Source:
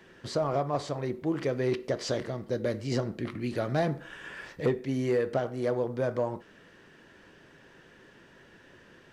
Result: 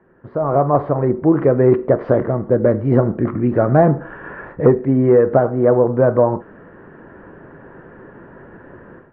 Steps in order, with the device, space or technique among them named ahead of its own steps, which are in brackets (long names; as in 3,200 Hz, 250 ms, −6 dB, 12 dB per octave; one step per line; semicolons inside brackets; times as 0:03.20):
action camera in a waterproof case (low-pass filter 1,400 Hz 24 dB per octave; automatic gain control gain up to 16 dB; level +1 dB; AAC 96 kbit/s 44,100 Hz)